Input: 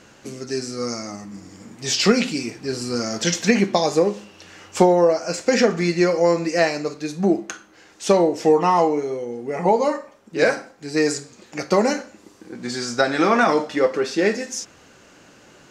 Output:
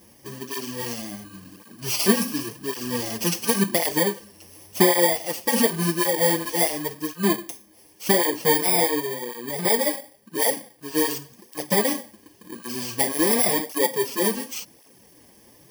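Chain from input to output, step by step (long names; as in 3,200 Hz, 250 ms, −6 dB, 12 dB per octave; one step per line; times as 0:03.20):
samples in bit-reversed order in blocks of 32 samples
through-zero flanger with one copy inverted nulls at 0.91 Hz, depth 7.8 ms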